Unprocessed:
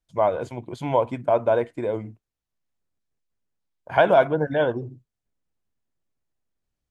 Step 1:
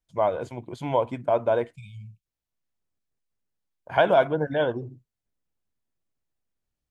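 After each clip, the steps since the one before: spectral selection erased 1.76–2.26 s, 200–2200 Hz; dynamic bell 3.2 kHz, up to +4 dB, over -49 dBFS, Q 4.9; trim -2.5 dB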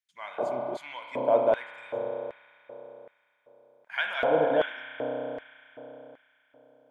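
resonant low shelf 310 Hz +10.5 dB, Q 1.5; spring tank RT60 3.6 s, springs 31 ms, chirp 40 ms, DRR 2 dB; LFO high-pass square 1.3 Hz 470–1900 Hz; trim -4.5 dB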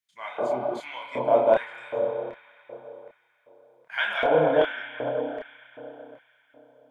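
chorus voices 6, 0.41 Hz, delay 29 ms, depth 4.9 ms; trim +6.5 dB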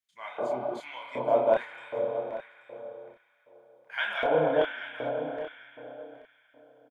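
delay 832 ms -13.5 dB; trim -4 dB

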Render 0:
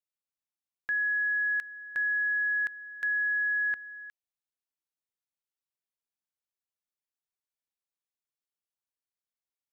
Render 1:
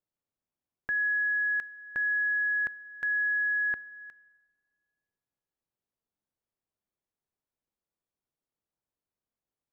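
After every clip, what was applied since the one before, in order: tilt shelf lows +9.5 dB, about 1.3 kHz; Schroeder reverb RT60 1.6 s, combs from 30 ms, DRR 20 dB; trim +2 dB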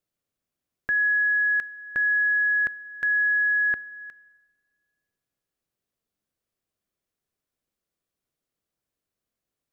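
peaking EQ 890 Hz -7.5 dB 0.31 oct; trim +6 dB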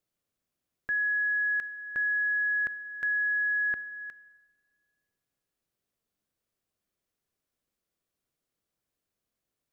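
peak limiter -24.5 dBFS, peak gain reduction 7.5 dB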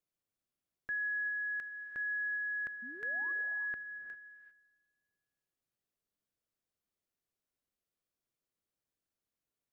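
painted sound rise, 2.82–3.32 s, 220–1200 Hz -45 dBFS; gated-style reverb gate 420 ms rising, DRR 8.5 dB; trim -7.5 dB

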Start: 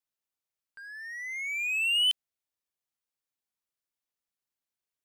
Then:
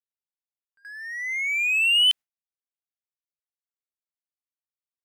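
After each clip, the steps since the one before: gate with hold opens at -40 dBFS; dynamic bell 1.8 kHz, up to +5 dB, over -41 dBFS, Q 0.8; trim +3.5 dB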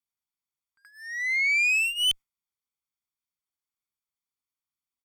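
comb 0.9 ms, depth 87%; valve stage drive 19 dB, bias 0.25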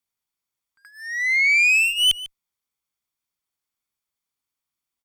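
delay 147 ms -16.5 dB; trim +6 dB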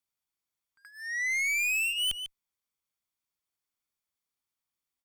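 saturation -23 dBFS, distortion -10 dB; trim -4 dB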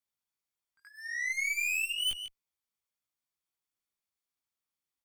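chorus 1.9 Hz, delay 16.5 ms, depth 4.5 ms

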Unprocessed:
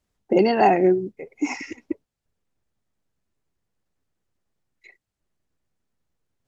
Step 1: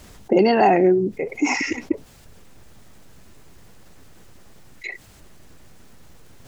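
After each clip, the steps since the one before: level flattener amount 50%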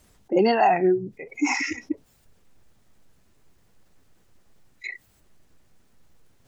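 spectral noise reduction 12 dB; trim -2 dB

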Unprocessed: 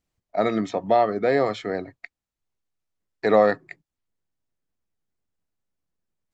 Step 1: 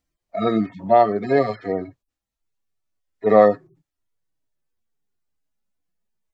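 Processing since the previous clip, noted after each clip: harmonic-percussive separation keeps harmonic; trim +5 dB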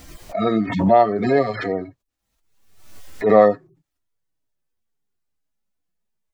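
swell ahead of each attack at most 60 dB/s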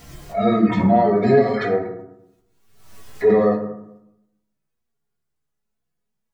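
peak limiter -10.5 dBFS, peak gain reduction 9 dB; flange 0.35 Hz, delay 9.4 ms, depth 2.4 ms, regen +83%; reverberation RT60 0.85 s, pre-delay 3 ms, DRR -3 dB; trim +2 dB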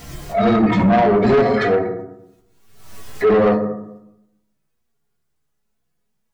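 saturation -16.5 dBFS, distortion -10 dB; trim +6.5 dB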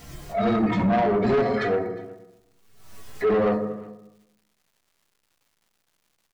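crackle 320 per s -47 dBFS; delay 360 ms -23 dB; trim -7 dB

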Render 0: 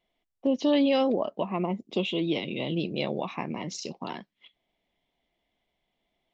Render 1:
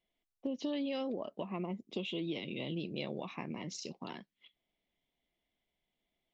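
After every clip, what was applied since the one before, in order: peaking EQ 810 Hz -4.5 dB 1.2 oct; compression 5:1, threshold -27 dBFS, peak gain reduction 6.5 dB; trim -6.5 dB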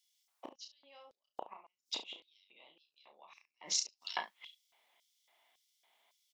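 inverted gate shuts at -31 dBFS, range -30 dB; early reflections 32 ms -5.5 dB, 70 ms -13.5 dB; LFO high-pass square 1.8 Hz 900–5300 Hz; trim +12 dB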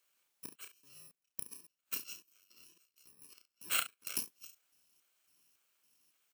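bit-reversed sample order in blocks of 64 samples; trim +1 dB

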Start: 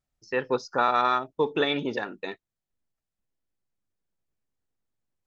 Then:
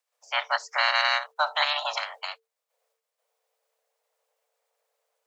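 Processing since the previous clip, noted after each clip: spectral peaks clipped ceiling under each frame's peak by 22 dB; frequency shift +450 Hz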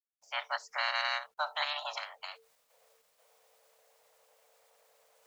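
reverse; upward compressor, threshold -41 dBFS; reverse; bit crusher 11-bit; trim -9 dB

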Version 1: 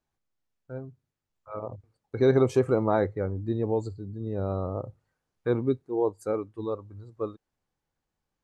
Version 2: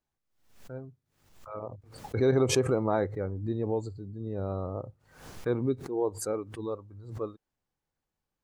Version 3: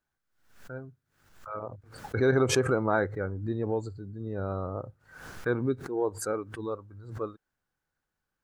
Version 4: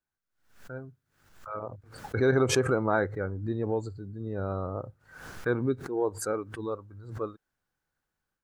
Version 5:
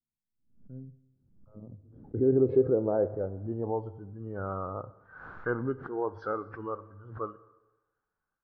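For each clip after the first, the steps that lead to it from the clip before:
swell ahead of each attack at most 90 dB/s; trim -3.5 dB
peaking EQ 1.5 kHz +11.5 dB 0.49 oct
level rider gain up to 8 dB; trim -7.5 dB
knee-point frequency compression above 1.7 kHz 1.5:1; Schroeder reverb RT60 1.1 s, combs from 27 ms, DRR 15.5 dB; low-pass sweep 220 Hz -> 1.3 kHz, 1.63–4.29 s; trim -4.5 dB

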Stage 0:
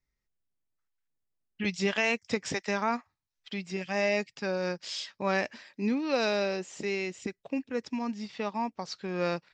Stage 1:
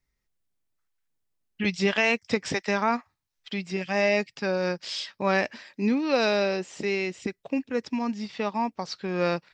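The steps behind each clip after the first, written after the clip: dynamic bell 6.8 kHz, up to -6 dB, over -59 dBFS, Q 3.4; trim +4.5 dB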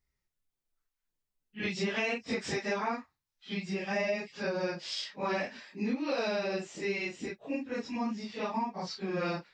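phase randomisation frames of 100 ms; compression 6:1, threshold -24 dBFS, peak gain reduction 8 dB; trim -4 dB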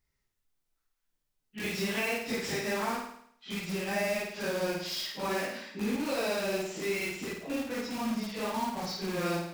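in parallel at -5 dB: integer overflow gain 34.5 dB; on the sum: flutter echo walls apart 9.1 m, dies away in 0.67 s; trim -1 dB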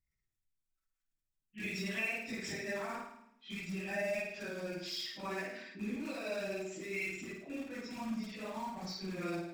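resonances exaggerated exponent 1.5; reverberation RT60 0.65 s, pre-delay 3 ms, DRR 6 dB; trim -6 dB

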